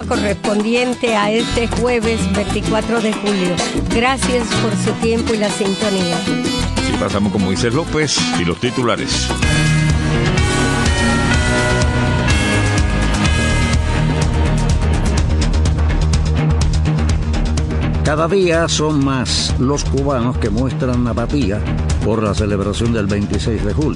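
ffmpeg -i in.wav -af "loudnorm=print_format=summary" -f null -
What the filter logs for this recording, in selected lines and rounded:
Input Integrated:    -16.2 LUFS
Input True Peak:      -2.3 dBTP
Input LRA:             2.6 LU
Input Threshold:     -26.2 LUFS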